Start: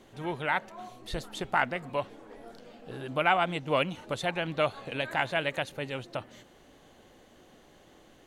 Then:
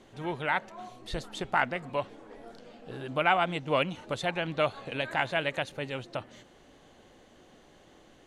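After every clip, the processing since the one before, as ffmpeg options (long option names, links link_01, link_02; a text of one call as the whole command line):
ffmpeg -i in.wav -af "lowpass=9600" out.wav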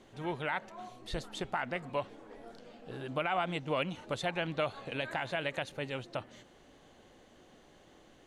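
ffmpeg -i in.wav -af "alimiter=limit=-19dB:level=0:latency=1:release=59,volume=-2.5dB" out.wav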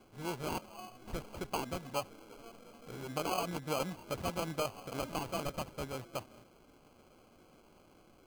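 ffmpeg -i in.wav -af "acrusher=samples=24:mix=1:aa=0.000001,volume=-2.5dB" out.wav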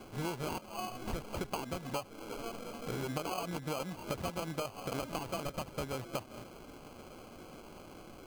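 ffmpeg -i in.wav -af "acompressor=threshold=-45dB:ratio=10,volume=11dB" out.wav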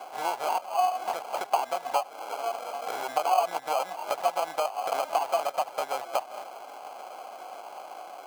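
ffmpeg -i in.wav -af "highpass=frequency=740:width_type=q:width=4.9,volume=5.5dB" out.wav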